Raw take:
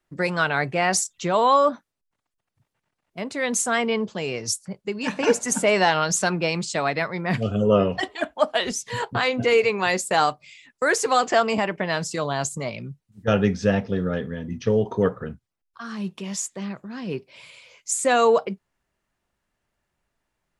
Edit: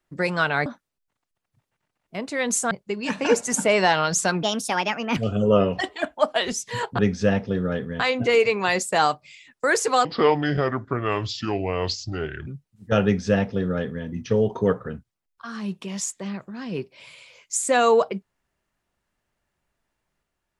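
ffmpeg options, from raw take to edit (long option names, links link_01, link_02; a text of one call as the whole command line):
ffmpeg -i in.wav -filter_complex "[0:a]asplit=9[link_01][link_02][link_03][link_04][link_05][link_06][link_07][link_08][link_09];[link_01]atrim=end=0.662[link_10];[link_02]atrim=start=1.688:end=3.742[link_11];[link_03]atrim=start=4.688:end=6.414[link_12];[link_04]atrim=start=6.41:end=7.36,asetpts=PTS-STARTPTS,asetrate=56889,aresample=44100[link_13];[link_05]atrim=start=7.356:end=9.182[link_14];[link_06]atrim=start=13.398:end=14.412[link_15];[link_07]atrim=start=9.178:end=11.234[link_16];[link_08]atrim=start=11.23:end=12.83,asetpts=PTS-STARTPTS,asetrate=29106,aresample=44100,atrim=end_sample=106909,asetpts=PTS-STARTPTS[link_17];[link_09]atrim=start=12.826[link_18];[link_10][link_11]acrossfade=duration=0.004:curve1=hsin:curve2=hsin[link_19];[link_19][link_12]acrossfade=duration=0.004:curve1=hsin:curve2=hsin[link_20];[link_20][link_13]acrossfade=duration=0.004:curve1=hsin:curve2=hsin[link_21];[link_21][link_14]acrossfade=duration=0.004:curve1=hsin:curve2=hsin[link_22];[link_22][link_15]acrossfade=duration=0.004:curve1=hsin:curve2=hsin[link_23];[link_23][link_16]acrossfade=duration=0.004:curve1=hsin:curve2=hsin[link_24];[link_24][link_17]acrossfade=duration=0.004:curve1=hsin:curve2=hsin[link_25];[link_25][link_18]acrossfade=duration=0.004:curve1=hsin:curve2=hsin" out.wav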